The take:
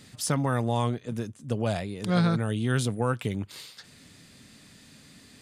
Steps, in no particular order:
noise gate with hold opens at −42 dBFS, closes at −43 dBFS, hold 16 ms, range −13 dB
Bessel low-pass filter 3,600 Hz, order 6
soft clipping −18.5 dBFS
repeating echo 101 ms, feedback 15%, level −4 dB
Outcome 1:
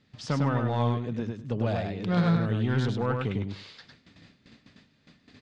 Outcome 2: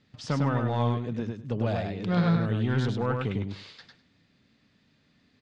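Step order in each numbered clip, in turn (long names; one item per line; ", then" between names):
Bessel low-pass filter, then soft clipping, then repeating echo, then noise gate with hold
soft clipping, then Bessel low-pass filter, then noise gate with hold, then repeating echo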